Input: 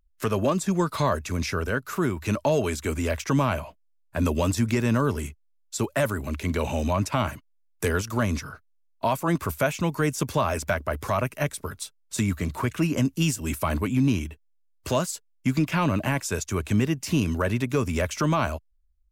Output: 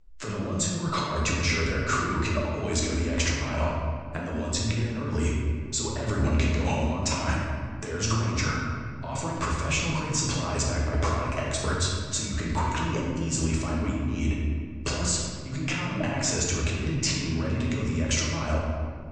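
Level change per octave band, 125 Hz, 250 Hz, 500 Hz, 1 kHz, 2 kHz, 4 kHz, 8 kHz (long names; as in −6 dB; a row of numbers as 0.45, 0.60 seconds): −0.5, −3.5, −5.0, −2.5, 0.0, +4.5, +5.0 decibels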